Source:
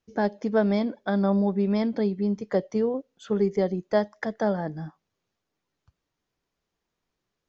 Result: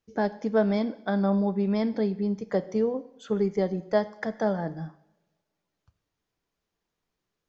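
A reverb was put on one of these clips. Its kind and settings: two-slope reverb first 0.73 s, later 2 s, from -23 dB, DRR 13 dB; trim -1.5 dB

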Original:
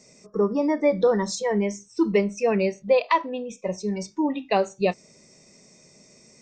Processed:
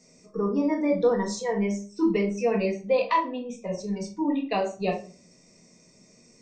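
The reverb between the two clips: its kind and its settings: simulated room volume 250 m³, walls furnished, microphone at 1.8 m; trim -6.5 dB

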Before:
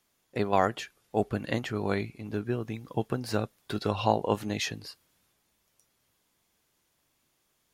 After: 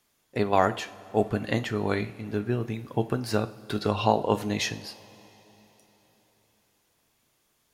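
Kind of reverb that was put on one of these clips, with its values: two-slope reverb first 0.41 s, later 4.1 s, from -18 dB, DRR 10 dB; trim +2.5 dB

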